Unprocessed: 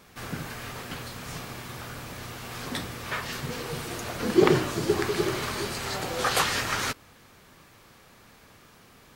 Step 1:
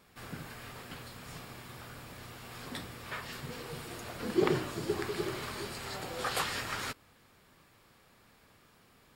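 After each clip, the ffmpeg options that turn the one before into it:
-af "bandreject=f=6100:w=8.7,volume=0.376"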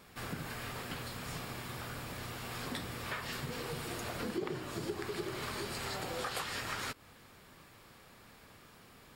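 -af "acompressor=threshold=0.00891:ratio=5,volume=1.78"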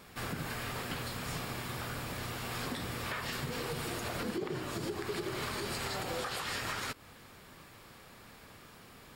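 -af "alimiter=level_in=2.11:limit=0.0631:level=0:latency=1:release=66,volume=0.473,volume=1.5"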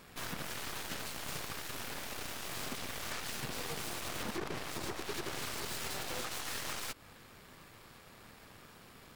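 -af "aeval=exprs='0.0473*(cos(1*acos(clip(val(0)/0.0473,-1,1)))-cos(1*PI/2))+0.0168*(cos(7*acos(clip(val(0)/0.0473,-1,1)))-cos(7*PI/2))+0.0106*(cos(8*acos(clip(val(0)/0.0473,-1,1)))-cos(8*PI/2))':c=same,volume=0.562"

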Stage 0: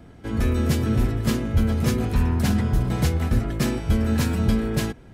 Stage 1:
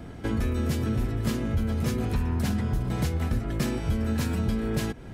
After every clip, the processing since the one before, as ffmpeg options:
-af "acompressor=threshold=0.0282:ratio=4,volume=1.88"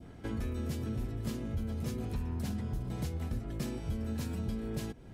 -af "adynamicequalizer=threshold=0.00282:dfrequency=1600:dqfactor=0.89:tfrequency=1600:tqfactor=0.89:attack=5:release=100:ratio=0.375:range=2.5:mode=cutabove:tftype=bell,volume=0.355"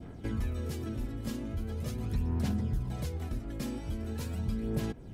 -af "aphaser=in_gain=1:out_gain=1:delay=3.7:decay=0.44:speed=0.41:type=sinusoidal"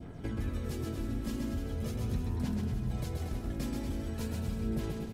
-af "acompressor=threshold=0.0224:ratio=2.5,aecho=1:1:130|234|317.2|383.8|437:0.631|0.398|0.251|0.158|0.1"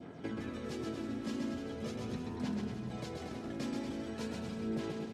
-af "highpass=210,lowpass=6200,volume=1.12"

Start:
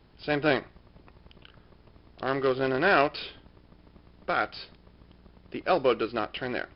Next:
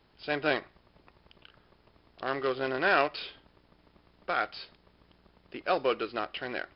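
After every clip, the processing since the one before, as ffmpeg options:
-af "lowshelf=f=330:g=-9,volume=0.841"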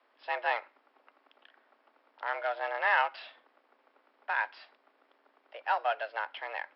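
-filter_complex "[0:a]afreqshift=220,acrossover=split=570 2800:gain=0.158 1 0.126[s0][s1][s2];[s0][s1][s2]amix=inputs=3:normalize=0"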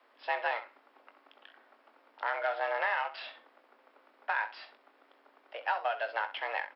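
-filter_complex "[0:a]acompressor=threshold=0.0282:ratio=12,asplit=2[s0][s1];[s1]aecho=0:1:21|65:0.316|0.211[s2];[s0][s2]amix=inputs=2:normalize=0,volume=1.5"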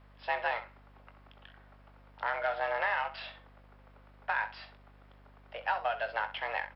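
-af "aeval=exprs='val(0)+0.00141*(sin(2*PI*50*n/s)+sin(2*PI*2*50*n/s)/2+sin(2*PI*3*50*n/s)/3+sin(2*PI*4*50*n/s)/4+sin(2*PI*5*50*n/s)/5)':c=same"

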